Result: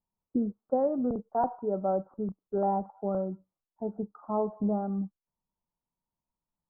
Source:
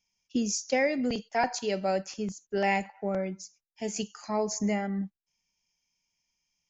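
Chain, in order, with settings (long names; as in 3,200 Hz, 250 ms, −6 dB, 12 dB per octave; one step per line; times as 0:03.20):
Butterworth low-pass 1,300 Hz 72 dB per octave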